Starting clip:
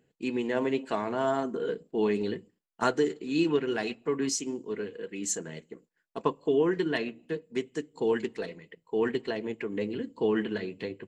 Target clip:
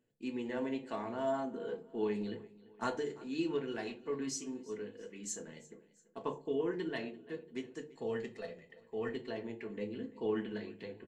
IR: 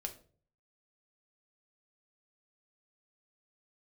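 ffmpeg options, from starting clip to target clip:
-filter_complex "[0:a]asettb=1/sr,asplit=3[s0][s1][s2];[s0]atrim=end=7.944[s3];[s1]atrim=start=7.94:end=9.12,asetpts=PTS-STARTPTS,afade=t=in:d=0.004:c=qsin,afade=t=out:st=1.176:d=0.004:c=qsin,aecho=1:1:1.6:0.54,atrim=end_sample=52038[s4];[s2]atrim=start=9.116[s5];[s3][s4]acrossfade=d=0.004:c1=hsin:c2=qsin[s6];[s6][s5]acrossfade=d=0.004:c1=qsin:c2=hsin,aecho=1:1:341|682|1023:0.0891|0.0428|0.0205[s7];[1:a]atrim=start_sample=2205,asetrate=61740,aresample=44100[s8];[s7][s8]afir=irnorm=-1:irlink=0,volume=0.562"

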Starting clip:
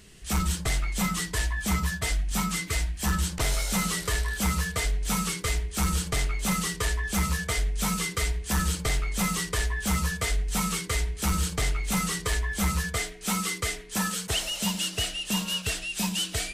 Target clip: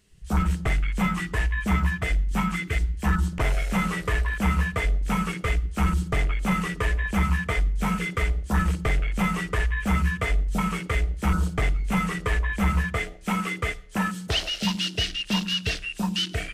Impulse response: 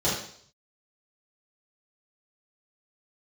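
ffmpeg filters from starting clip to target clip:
-filter_complex "[0:a]afwtdn=0.02,asplit=2[s0][s1];[1:a]atrim=start_sample=2205,adelay=41[s2];[s1][s2]afir=irnorm=-1:irlink=0,volume=0.02[s3];[s0][s3]amix=inputs=2:normalize=0,volume=1.58"

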